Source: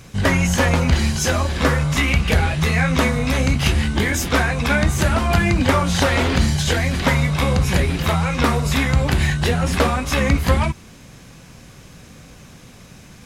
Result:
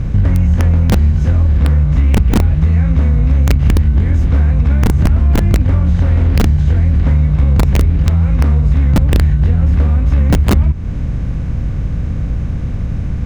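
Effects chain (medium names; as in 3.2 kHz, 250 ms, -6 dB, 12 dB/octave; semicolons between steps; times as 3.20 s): spectral levelling over time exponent 0.6; RIAA curve playback; integer overflow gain -6.5 dB; bass shelf 280 Hz +10 dB; compression 3:1, threshold -2 dBFS, peak gain reduction 10.5 dB; trim -8.5 dB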